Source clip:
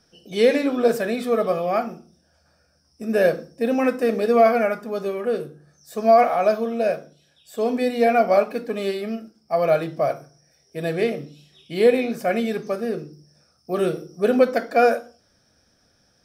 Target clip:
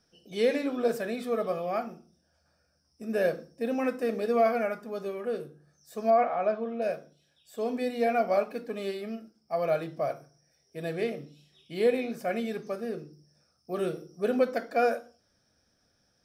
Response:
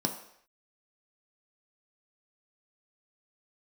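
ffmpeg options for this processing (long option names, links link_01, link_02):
-filter_complex "[0:a]asettb=1/sr,asplit=3[link_01][link_02][link_03];[link_01]atrim=end=6.104[link_04];[link_02]atrim=start=6.1:end=6.82,asetpts=PTS-STARTPTS,afade=type=in:duration=0.004:curve=qsin,afade=type=out:start_time=0.716:duration=0.004:curve=qsin,lowpass=2600[link_05];[link_03]atrim=start=6.816[link_06];[link_04][link_05]acrossfade=duration=0.004:curve1=hsin:curve2=qsin[link_07];[link_07][link_06]acrossfade=duration=0.004:curve1=qsin:curve2=hsin,volume=-8.5dB"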